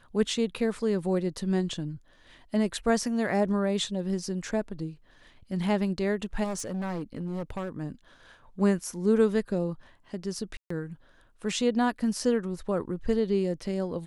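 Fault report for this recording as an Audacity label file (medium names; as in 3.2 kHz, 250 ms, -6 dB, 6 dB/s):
6.430000	7.690000	clipped -28.5 dBFS
10.570000	10.700000	dropout 134 ms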